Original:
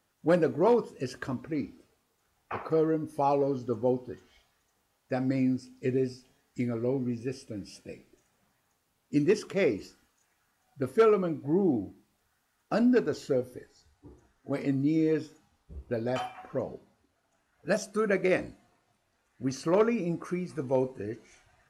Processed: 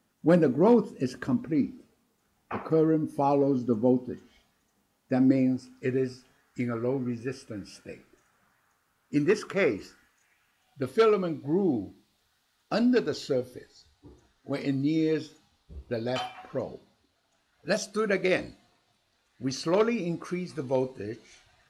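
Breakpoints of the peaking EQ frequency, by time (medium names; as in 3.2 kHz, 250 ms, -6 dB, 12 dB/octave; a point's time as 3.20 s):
peaking EQ +10.5 dB 0.94 oct
5.18 s 220 Hz
5.72 s 1.4 kHz
9.77 s 1.4 kHz
10.98 s 3.9 kHz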